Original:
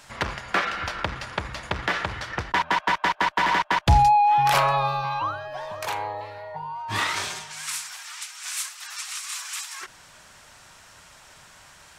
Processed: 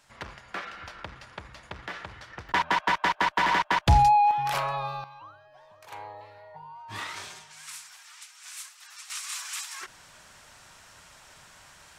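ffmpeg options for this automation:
-af "asetnsamples=n=441:p=0,asendcmd='2.49 volume volume -2dB;4.31 volume volume -8.5dB;5.04 volume volume -20dB;5.92 volume volume -11dB;9.1 volume volume -2.5dB',volume=-12.5dB"

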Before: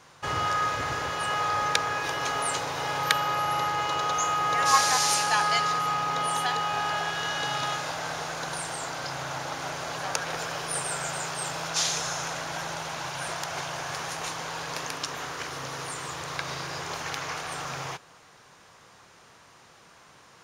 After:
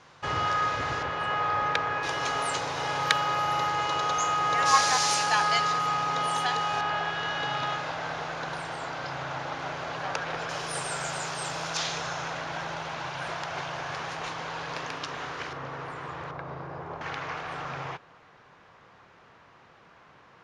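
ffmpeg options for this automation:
-af "asetnsamples=n=441:p=0,asendcmd='1.03 lowpass f 2800;2.03 lowpass f 6900;6.81 lowpass f 3400;10.49 lowpass f 7200;11.77 lowpass f 3700;15.53 lowpass f 1900;16.31 lowpass f 1000;17.01 lowpass f 2600',lowpass=5k"

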